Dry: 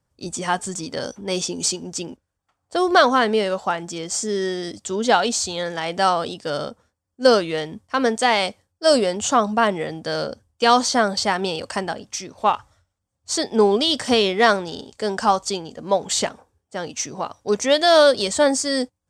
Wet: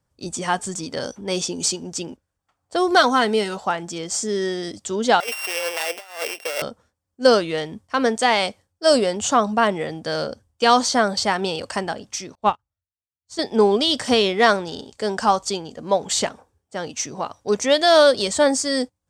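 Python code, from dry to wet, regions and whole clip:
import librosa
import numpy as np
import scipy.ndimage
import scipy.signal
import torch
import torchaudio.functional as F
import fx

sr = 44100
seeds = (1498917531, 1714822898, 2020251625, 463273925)

y = fx.chain(x, sr, fx.high_shelf(hz=6300.0, db=10.0),
    fx.notch_comb(f0_hz=570.0), at=(2.88, 3.57))
y = fx.chain(y, sr, fx.sample_sort(block=16),
    fx.highpass(hz=460.0, slope=24),
    fx.over_compress(threshold_db=-27.0, ratio=-0.5), at=(5.2, 6.62))
y = fx.chain(y, sr, fx.low_shelf(hz=220.0, db=11.5),
    fx.upward_expand(threshold_db=-37.0, expansion=2.5), at=(12.35, 13.39))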